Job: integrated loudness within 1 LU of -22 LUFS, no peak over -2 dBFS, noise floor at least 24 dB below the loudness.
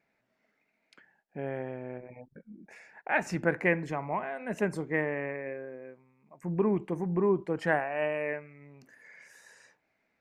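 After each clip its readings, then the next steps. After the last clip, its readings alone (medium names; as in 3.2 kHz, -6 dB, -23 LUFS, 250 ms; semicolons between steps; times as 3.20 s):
loudness -31.5 LUFS; peak level -10.5 dBFS; loudness target -22.0 LUFS
-> trim +9.5 dB; peak limiter -2 dBFS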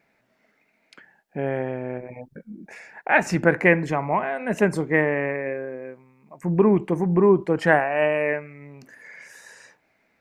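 loudness -22.0 LUFS; peak level -2.0 dBFS; noise floor -68 dBFS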